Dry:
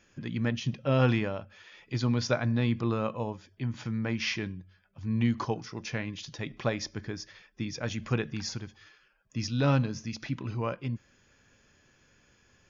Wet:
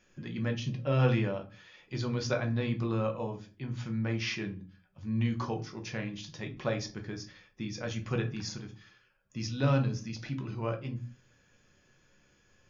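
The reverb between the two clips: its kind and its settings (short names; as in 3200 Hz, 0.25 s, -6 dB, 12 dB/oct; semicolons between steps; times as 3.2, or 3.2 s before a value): shoebox room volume 140 m³, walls furnished, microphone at 1 m; gain -4.5 dB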